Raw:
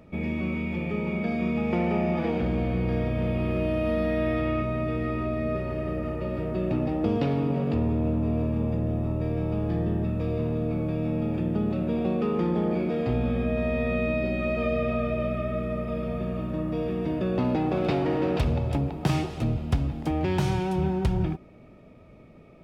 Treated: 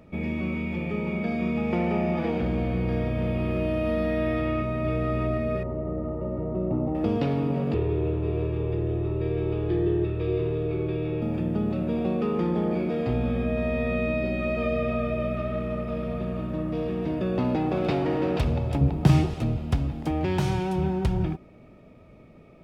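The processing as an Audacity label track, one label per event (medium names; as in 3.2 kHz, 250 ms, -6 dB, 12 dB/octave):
4.550000	5.080000	echo throw 290 ms, feedback 45%, level -5.5 dB
5.630000	6.950000	Savitzky-Golay filter over 65 samples
7.740000	11.220000	FFT filter 150 Hz 0 dB, 250 Hz -25 dB, 360 Hz +15 dB, 560 Hz -5 dB, 3.6 kHz +5 dB, 5.9 kHz -10 dB
15.360000	17.170000	self-modulated delay depth 0.074 ms
18.810000	19.340000	bass shelf 230 Hz +10.5 dB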